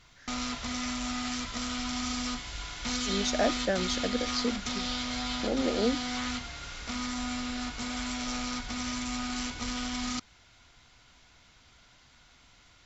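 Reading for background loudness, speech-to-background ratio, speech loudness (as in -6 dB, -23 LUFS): -33.5 LUFS, 1.5 dB, -32.0 LUFS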